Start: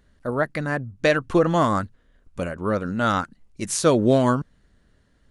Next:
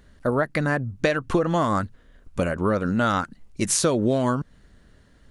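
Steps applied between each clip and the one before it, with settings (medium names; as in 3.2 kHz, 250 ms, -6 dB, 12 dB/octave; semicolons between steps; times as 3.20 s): compression 6:1, threshold -25 dBFS, peak gain reduction 12 dB; trim +6.5 dB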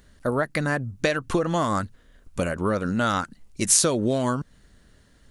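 treble shelf 4 kHz +8.5 dB; trim -2 dB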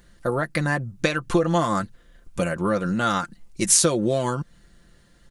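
comb 5.8 ms, depth 55%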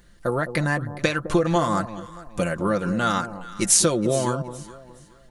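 echo whose repeats swap between lows and highs 209 ms, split 960 Hz, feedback 51%, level -10.5 dB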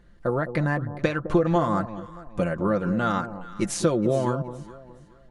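low-pass 1.3 kHz 6 dB/octave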